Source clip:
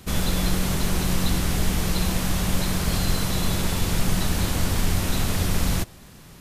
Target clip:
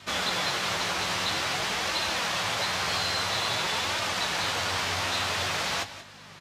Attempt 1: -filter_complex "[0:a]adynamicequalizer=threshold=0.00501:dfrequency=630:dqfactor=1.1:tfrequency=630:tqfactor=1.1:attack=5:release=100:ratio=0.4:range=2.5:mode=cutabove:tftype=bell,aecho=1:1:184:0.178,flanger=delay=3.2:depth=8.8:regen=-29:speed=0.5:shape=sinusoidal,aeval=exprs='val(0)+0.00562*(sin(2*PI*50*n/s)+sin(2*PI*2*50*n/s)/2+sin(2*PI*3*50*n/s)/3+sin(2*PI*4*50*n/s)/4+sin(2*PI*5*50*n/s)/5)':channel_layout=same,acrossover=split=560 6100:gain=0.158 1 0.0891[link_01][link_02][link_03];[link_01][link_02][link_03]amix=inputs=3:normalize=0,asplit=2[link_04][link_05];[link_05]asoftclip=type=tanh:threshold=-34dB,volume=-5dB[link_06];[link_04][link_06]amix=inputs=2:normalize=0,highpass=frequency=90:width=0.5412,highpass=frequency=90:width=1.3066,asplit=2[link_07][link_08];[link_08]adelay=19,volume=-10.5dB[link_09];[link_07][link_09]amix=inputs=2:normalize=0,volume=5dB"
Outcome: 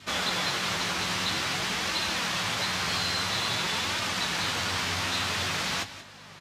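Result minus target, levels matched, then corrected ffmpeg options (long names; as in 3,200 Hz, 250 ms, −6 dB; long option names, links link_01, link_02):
250 Hz band +3.0 dB
-filter_complex "[0:a]adynamicequalizer=threshold=0.00501:dfrequency=210:dqfactor=1.1:tfrequency=210:tqfactor=1.1:attack=5:release=100:ratio=0.4:range=2.5:mode=cutabove:tftype=bell,aecho=1:1:184:0.178,flanger=delay=3.2:depth=8.8:regen=-29:speed=0.5:shape=sinusoidal,aeval=exprs='val(0)+0.00562*(sin(2*PI*50*n/s)+sin(2*PI*2*50*n/s)/2+sin(2*PI*3*50*n/s)/3+sin(2*PI*4*50*n/s)/4+sin(2*PI*5*50*n/s)/5)':channel_layout=same,acrossover=split=560 6100:gain=0.158 1 0.0891[link_01][link_02][link_03];[link_01][link_02][link_03]amix=inputs=3:normalize=0,asplit=2[link_04][link_05];[link_05]asoftclip=type=tanh:threshold=-34dB,volume=-5dB[link_06];[link_04][link_06]amix=inputs=2:normalize=0,highpass=frequency=90:width=0.5412,highpass=frequency=90:width=1.3066,asplit=2[link_07][link_08];[link_08]adelay=19,volume=-10.5dB[link_09];[link_07][link_09]amix=inputs=2:normalize=0,volume=5dB"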